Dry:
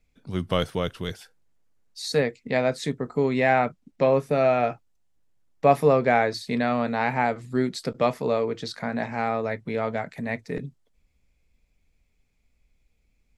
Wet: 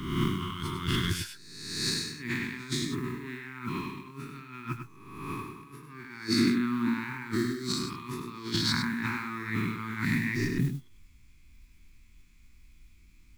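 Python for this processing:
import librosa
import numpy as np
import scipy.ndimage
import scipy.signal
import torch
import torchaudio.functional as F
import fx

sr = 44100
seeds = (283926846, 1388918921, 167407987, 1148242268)

p1 = fx.spec_swells(x, sr, rise_s=1.08)
p2 = fx.over_compress(p1, sr, threshold_db=-32.0, ratio=-1.0)
p3 = scipy.signal.sosfilt(scipy.signal.ellip(3, 1.0, 40, [360.0, 1000.0], 'bandstop', fs=sr, output='sos'), p2)
p4 = fx.mod_noise(p3, sr, seeds[0], snr_db=25)
p5 = fx.peak_eq(p4, sr, hz=300.0, db=11.0, octaves=1.3, at=(6.28, 6.94))
y = p5 + fx.echo_single(p5, sr, ms=100, db=-7.5, dry=0)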